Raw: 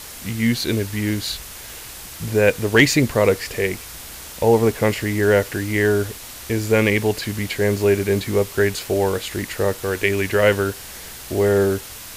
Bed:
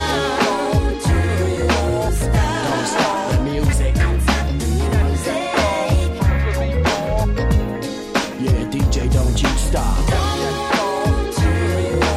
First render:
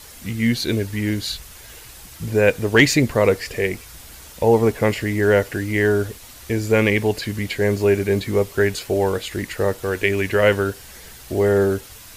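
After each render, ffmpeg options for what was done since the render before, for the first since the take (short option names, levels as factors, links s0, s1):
-af "afftdn=nr=7:nf=-37"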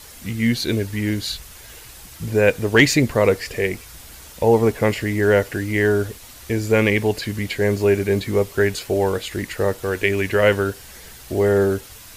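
-af anull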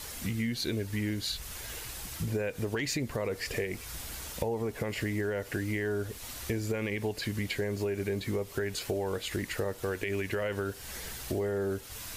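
-af "alimiter=limit=0.251:level=0:latency=1:release=102,acompressor=threshold=0.0282:ratio=4"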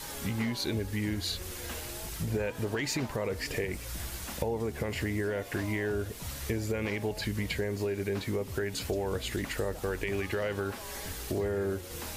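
-filter_complex "[1:a]volume=0.0473[s0];[0:a][s0]amix=inputs=2:normalize=0"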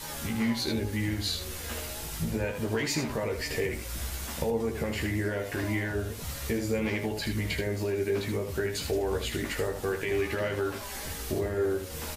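-filter_complex "[0:a]asplit=2[s0][s1];[s1]adelay=18,volume=0.282[s2];[s0][s2]amix=inputs=2:normalize=0,aecho=1:1:13|78:0.596|0.473"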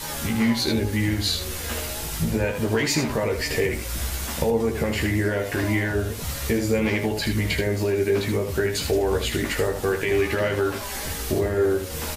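-af "volume=2.24"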